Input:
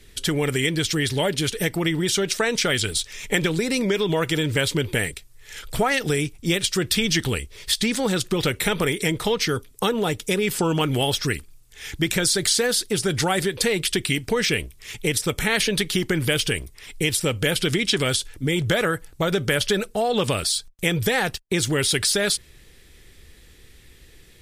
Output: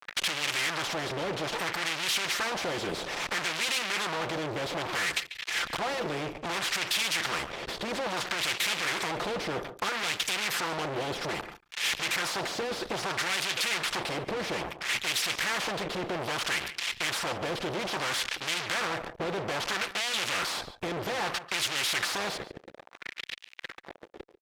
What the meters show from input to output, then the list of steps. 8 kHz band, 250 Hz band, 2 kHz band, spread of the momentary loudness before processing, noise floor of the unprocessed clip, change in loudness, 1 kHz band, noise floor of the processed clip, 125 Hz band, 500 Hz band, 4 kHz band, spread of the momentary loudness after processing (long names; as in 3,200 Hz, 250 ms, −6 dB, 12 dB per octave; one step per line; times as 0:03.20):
−9.0 dB, −14.5 dB, −4.5 dB, 5 LU, −50 dBFS, −7.5 dB, −2.5 dB, −56 dBFS, −17.0 dB, −11.0 dB, −6.0 dB, 7 LU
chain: noise gate −37 dBFS, range −7 dB
parametric band 9,100 Hz −12.5 dB 0.9 octaves
comb filter 5.8 ms, depth 67%
in parallel at 0 dB: downward compressor, threshold −28 dBFS, peak gain reduction 14 dB
on the sum: fuzz pedal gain 39 dB, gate −42 dBFS
LFO wah 0.61 Hz 430–2,900 Hz, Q 2.2
on a send: single-tap delay 142 ms −21.5 dB
on the sum: every bin compressed towards the loudest bin 2 to 1
level −4 dB